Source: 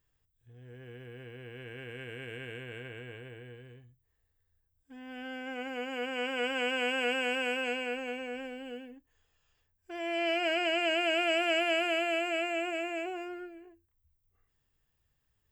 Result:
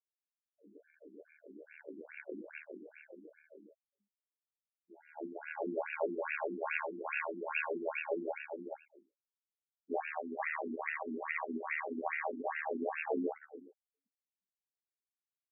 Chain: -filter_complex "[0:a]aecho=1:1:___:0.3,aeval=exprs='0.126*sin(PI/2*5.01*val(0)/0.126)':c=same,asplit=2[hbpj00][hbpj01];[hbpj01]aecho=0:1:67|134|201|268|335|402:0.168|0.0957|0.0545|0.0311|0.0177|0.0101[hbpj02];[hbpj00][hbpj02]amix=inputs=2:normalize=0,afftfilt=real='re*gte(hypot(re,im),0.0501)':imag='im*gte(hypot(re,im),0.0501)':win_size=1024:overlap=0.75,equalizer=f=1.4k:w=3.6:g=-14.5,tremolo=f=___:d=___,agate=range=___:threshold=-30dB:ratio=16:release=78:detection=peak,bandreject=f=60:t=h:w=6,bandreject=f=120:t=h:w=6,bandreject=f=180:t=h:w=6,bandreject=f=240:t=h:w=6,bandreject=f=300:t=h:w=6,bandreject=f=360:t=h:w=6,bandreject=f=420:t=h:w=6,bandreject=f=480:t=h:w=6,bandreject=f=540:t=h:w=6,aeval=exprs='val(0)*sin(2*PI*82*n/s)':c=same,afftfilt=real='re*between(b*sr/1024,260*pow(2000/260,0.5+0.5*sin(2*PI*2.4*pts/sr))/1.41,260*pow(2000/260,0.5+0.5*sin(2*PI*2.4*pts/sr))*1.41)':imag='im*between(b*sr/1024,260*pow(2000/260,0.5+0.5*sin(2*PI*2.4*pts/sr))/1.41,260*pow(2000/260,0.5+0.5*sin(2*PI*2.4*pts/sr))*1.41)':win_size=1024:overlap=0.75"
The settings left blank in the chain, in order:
2.6, 74, 0.824, -12dB